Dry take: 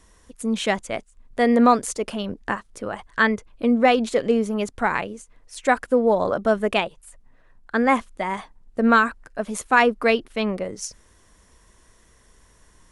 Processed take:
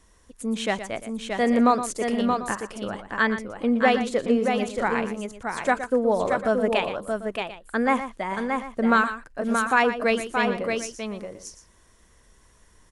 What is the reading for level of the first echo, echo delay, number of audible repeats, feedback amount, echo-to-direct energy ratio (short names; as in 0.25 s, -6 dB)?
-11.5 dB, 0.118 s, 3, no steady repeat, -4.0 dB